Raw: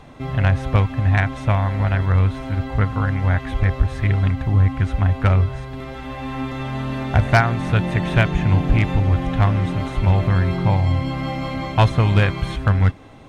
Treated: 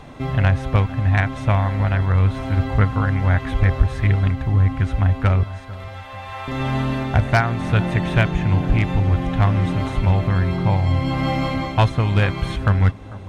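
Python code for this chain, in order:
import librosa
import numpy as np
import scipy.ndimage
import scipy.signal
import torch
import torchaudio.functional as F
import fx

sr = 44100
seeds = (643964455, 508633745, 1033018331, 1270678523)

y = fx.steep_highpass(x, sr, hz=520.0, slope=36, at=(5.43, 6.48))
y = fx.rider(y, sr, range_db=5, speed_s=0.5)
y = fx.echo_bbd(y, sr, ms=447, stages=4096, feedback_pct=54, wet_db=-18.5)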